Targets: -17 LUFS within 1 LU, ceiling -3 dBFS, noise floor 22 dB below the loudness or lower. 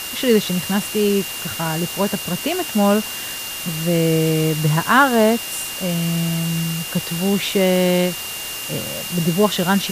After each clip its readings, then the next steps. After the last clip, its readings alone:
steady tone 2800 Hz; tone level -31 dBFS; noise floor -29 dBFS; noise floor target -41 dBFS; loudness -19.0 LUFS; peak -1.5 dBFS; loudness target -17.0 LUFS
-> notch 2800 Hz, Q 30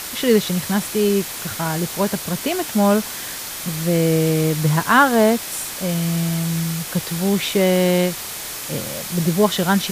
steady tone none; noise floor -30 dBFS; noise floor target -42 dBFS
-> denoiser 12 dB, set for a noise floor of -30 dBFS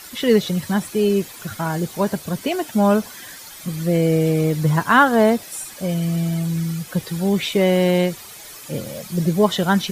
noise floor -39 dBFS; noise floor target -42 dBFS
-> denoiser 6 dB, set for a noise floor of -39 dBFS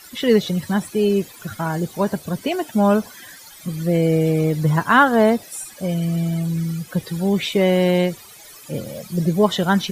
noise floor -43 dBFS; loudness -20.0 LUFS; peak -2.0 dBFS; loudness target -17.0 LUFS
-> gain +3 dB; limiter -3 dBFS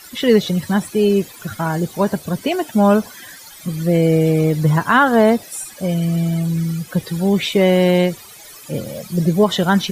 loudness -17.5 LUFS; peak -3.0 dBFS; noise floor -40 dBFS

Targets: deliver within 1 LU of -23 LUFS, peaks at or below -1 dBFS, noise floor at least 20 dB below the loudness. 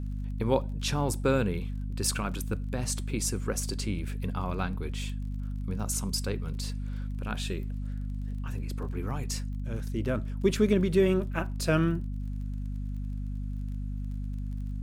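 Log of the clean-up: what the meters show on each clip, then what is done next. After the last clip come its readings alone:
ticks 29/s; hum 50 Hz; harmonics up to 250 Hz; hum level -31 dBFS; loudness -31.5 LUFS; peak -12.0 dBFS; loudness target -23.0 LUFS
-> de-click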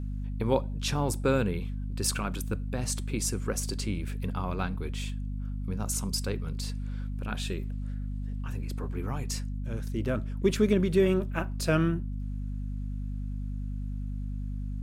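ticks 0.067/s; hum 50 Hz; harmonics up to 250 Hz; hum level -31 dBFS
-> notches 50/100/150/200/250 Hz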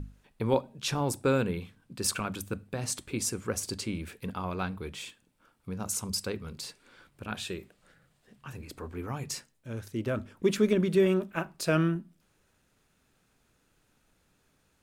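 hum none; loudness -31.5 LUFS; peak -12.5 dBFS; loudness target -23.0 LUFS
-> gain +8.5 dB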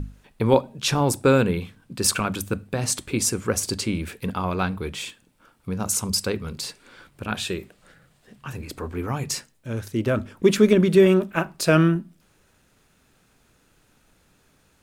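loudness -23.0 LUFS; peak -4.0 dBFS; noise floor -62 dBFS

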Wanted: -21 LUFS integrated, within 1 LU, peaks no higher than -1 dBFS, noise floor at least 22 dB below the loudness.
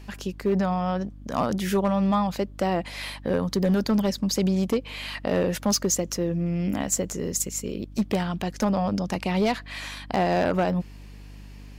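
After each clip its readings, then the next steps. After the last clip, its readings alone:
clipped 1.1%; flat tops at -16.5 dBFS; hum 50 Hz; harmonics up to 300 Hz; hum level -41 dBFS; loudness -26.0 LUFS; peak -16.5 dBFS; loudness target -21.0 LUFS
-> clip repair -16.5 dBFS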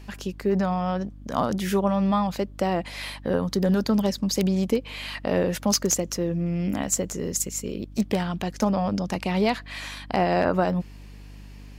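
clipped 0.0%; hum 50 Hz; harmonics up to 150 Hz; hum level -41 dBFS
-> de-hum 50 Hz, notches 3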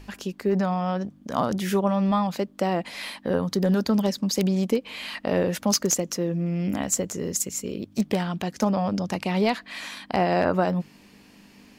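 hum none; loudness -25.5 LUFS; peak -7.5 dBFS; loudness target -21.0 LUFS
-> gain +4.5 dB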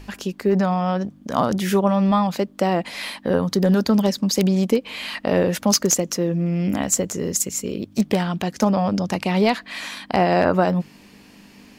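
loudness -21.0 LUFS; peak -3.0 dBFS; noise floor -49 dBFS

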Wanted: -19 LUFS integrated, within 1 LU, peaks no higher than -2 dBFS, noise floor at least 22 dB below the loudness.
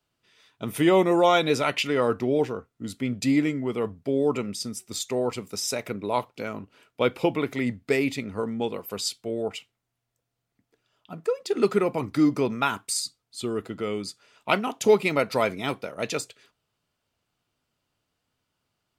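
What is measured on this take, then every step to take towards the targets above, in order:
loudness -26.0 LUFS; peak -7.5 dBFS; loudness target -19.0 LUFS
-> gain +7 dB; limiter -2 dBFS

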